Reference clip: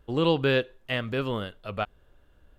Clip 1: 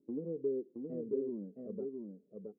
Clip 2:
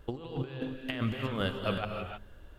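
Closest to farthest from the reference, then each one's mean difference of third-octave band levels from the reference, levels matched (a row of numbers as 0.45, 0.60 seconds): 2, 1; 9.5, 14.5 decibels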